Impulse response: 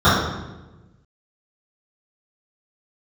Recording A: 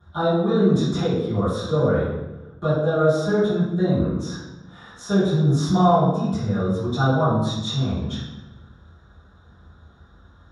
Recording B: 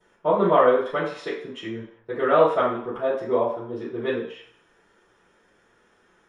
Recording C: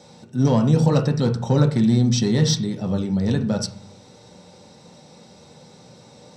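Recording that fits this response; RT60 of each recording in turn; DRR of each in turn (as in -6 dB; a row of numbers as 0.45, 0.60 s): A; 1.1, 0.60, 0.45 s; -16.5, -15.0, 3.0 dB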